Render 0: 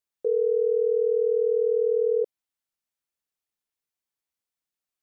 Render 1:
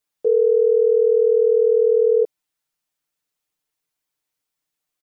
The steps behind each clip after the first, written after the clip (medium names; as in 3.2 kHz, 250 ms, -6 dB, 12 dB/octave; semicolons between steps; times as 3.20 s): comb 6.6 ms, depth 86%; in parallel at -2 dB: peak limiter -20.5 dBFS, peak gain reduction 8.5 dB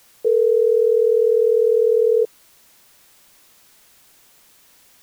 added noise white -53 dBFS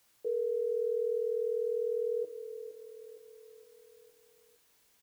feedback comb 320 Hz, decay 0.39 s, harmonics odd, mix 60%; feedback delay 464 ms, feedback 51%, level -12 dB; reverberation, pre-delay 3 ms, DRR 10 dB; trim -8.5 dB